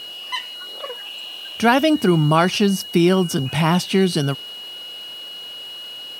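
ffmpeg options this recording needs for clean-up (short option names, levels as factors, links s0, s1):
-af "bandreject=f=2900:w=30"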